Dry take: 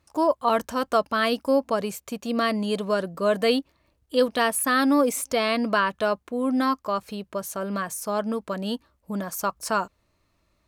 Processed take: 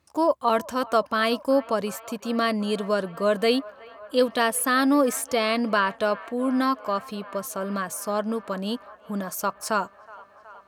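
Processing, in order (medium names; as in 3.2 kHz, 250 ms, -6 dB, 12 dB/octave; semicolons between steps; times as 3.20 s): high-pass 77 Hz; on a send: feedback echo behind a band-pass 370 ms, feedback 80%, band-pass 1.2 kHz, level -19.5 dB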